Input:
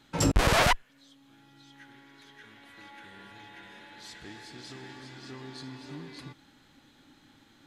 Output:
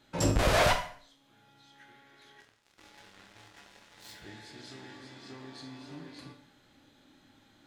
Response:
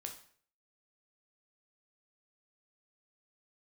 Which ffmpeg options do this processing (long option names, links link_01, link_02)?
-filter_complex "[0:a]equalizer=frequency=610:width_type=o:width=0.34:gain=6.5,asettb=1/sr,asplit=3[link_01][link_02][link_03];[link_01]atrim=end=2.404[link_04];[link_02]atrim=start=2.4:end=4.12,asetpts=PTS-STARTPTS,afade=type=in:duration=0.004:curve=qsin,afade=type=out:start_time=1.716:duration=0.004:curve=qsin,acrusher=bits=6:mix=0:aa=0.5[link_05];[link_03]atrim=start=4.116[link_06];[link_04][link_05]acrossfade=duration=0.004:curve1=hsin:curve2=qsin[link_07];[link_07][link_06]acrossfade=duration=0.004:curve1=qsin:curve2=hsin[link_08];[1:a]atrim=start_sample=2205[link_09];[link_08][link_09]afir=irnorm=-1:irlink=0"